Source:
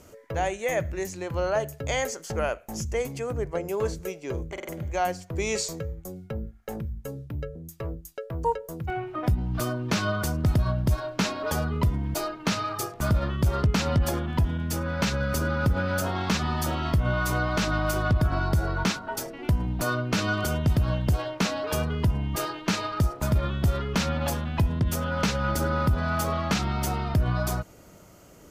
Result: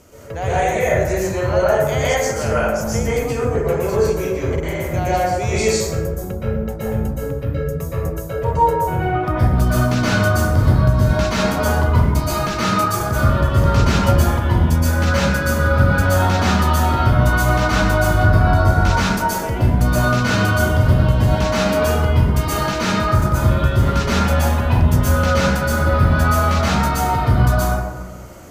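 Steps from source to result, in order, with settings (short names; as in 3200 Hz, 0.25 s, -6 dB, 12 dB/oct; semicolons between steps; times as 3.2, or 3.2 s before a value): in parallel at +1 dB: limiter -24 dBFS, peak gain reduction 10.5 dB; on the sum: hard clip -13.5 dBFS, distortion -29 dB; plate-style reverb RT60 1.2 s, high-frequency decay 0.45×, pre-delay 0.11 s, DRR -9.5 dB; gain -4 dB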